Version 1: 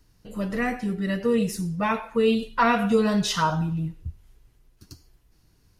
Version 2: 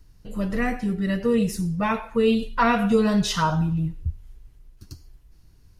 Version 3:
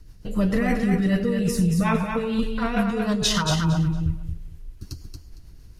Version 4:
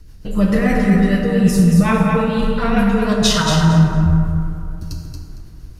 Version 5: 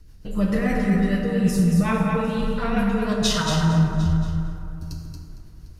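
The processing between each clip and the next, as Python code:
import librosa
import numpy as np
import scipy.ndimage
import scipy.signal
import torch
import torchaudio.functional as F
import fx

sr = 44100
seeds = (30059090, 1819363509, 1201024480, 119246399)

y1 = fx.low_shelf(x, sr, hz=99.0, db=11.5)
y2 = fx.over_compress(y1, sr, threshold_db=-25.0, ratio=-1.0)
y2 = fx.rotary(y2, sr, hz=6.7)
y2 = fx.echo_feedback(y2, sr, ms=229, feedback_pct=21, wet_db=-5.5)
y2 = y2 * 10.0 ** (4.5 / 20.0)
y3 = fx.rev_plate(y2, sr, seeds[0], rt60_s=2.7, hf_ratio=0.35, predelay_ms=0, drr_db=1.0)
y3 = y3 * 10.0 ** (4.5 / 20.0)
y4 = y3 + 10.0 ** (-20.0 / 20.0) * np.pad(y3, (int(751 * sr / 1000.0), 0))[:len(y3)]
y4 = y4 * 10.0 ** (-6.5 / 20.0)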